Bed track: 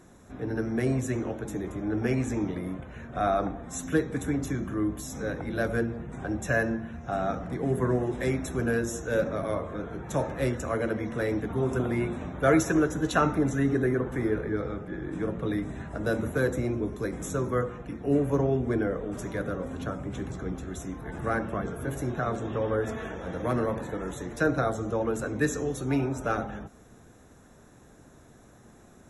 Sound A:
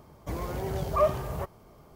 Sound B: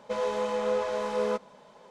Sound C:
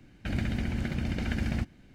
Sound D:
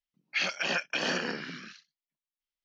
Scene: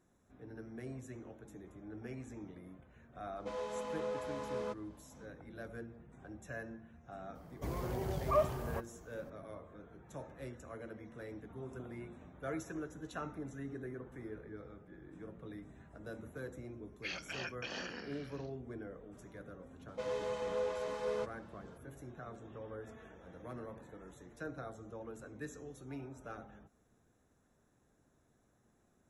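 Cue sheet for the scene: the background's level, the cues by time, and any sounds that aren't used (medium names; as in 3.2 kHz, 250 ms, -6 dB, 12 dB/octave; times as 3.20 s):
bed track -19 dB
3.36 s: add B -11.5 dB
7.35 s: add A -6.5 dB
16.69 s: add D -13 dB
19.88 s: add B -10 dB + comb 7.5 ms, depth 59%
not used: C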